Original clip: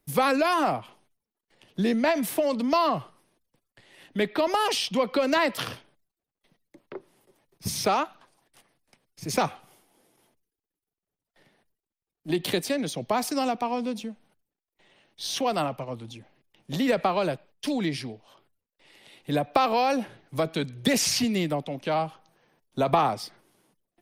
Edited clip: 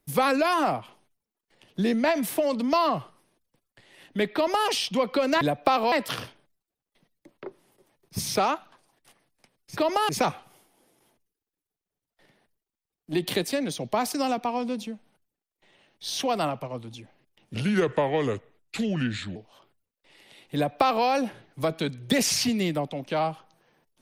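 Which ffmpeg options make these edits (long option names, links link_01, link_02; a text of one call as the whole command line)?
ffmpeg -i in.wav -filter_complex "[0:a]asplit=7[link_01][link_02][link_03][link_04][link_05][link_06][link_07];[link_01]atrim=end=5.412[link_08];[link_02]atrim=start=19.298:end=19.812[link_09];[link_03]atrim=start=5.408:end=9.262[link_10];[link_04]atrim=start=4.348:end=4.672[link_11];[link_05]atrim=start=9.258:end=16.714[link_12];[link_06]atrim=start=16.71:end=18.11,asetpts=PTS-STARTPTS,asetrate=33957,aresample=44100[link_13];[link_07]atrim=start=18.106[link_14];[link_08][link_09]acrossfade=duration=0.004:curve1=hsin:curve2=hsin[link_15];[link_15][link_10]acrossfade=duration=0.004:curve1=hsin:curve2=hsin[link_16];[link_16][link_11]acrossfade=duration=0.004:curve1=hsin:curve2=hsin[link_17];[link_17][link_12]acrossfade=duration=0.004:curve1=hsin:curve2=hsin[link_18];[link_18][link_13]acrossfade=duration=0.004:curve1=hsin:curve2=hsin[link_19];[link_19][link_14]acrossfade=duration=0.004:curve1=hsin:curve2=hsin" out.wav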